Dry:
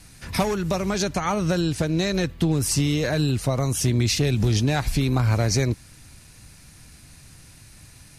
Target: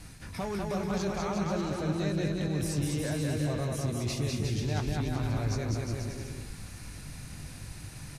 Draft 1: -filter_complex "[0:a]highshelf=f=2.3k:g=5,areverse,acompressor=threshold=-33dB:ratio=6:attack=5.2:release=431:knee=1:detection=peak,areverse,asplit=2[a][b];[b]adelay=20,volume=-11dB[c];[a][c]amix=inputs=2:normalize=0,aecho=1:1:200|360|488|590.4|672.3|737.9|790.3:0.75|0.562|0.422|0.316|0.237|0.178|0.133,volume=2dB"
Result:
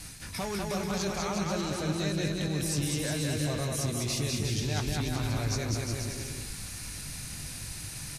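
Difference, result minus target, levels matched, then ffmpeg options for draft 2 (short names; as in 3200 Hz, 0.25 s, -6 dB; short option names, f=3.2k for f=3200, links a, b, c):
4000 Hz band +6.5 dB
-filter_complex "[0:a]highshelf=f=2.3k:g=-6,areverse,acompressor=threshold=-33dB:ratio=6:attack=5.2:release=431:knee=1:detection=peak,areverse,asplit=2[a][b];[b]adelay=20,volume=-11dB[c];[a][c]amix=inputs=2:normalize=0,aecho=1:1:200|360|488|590.4|672.3|737.9|790.3:0.75|0.562|0.422|0.316|0.237|0.178|0.133,volume=2dB"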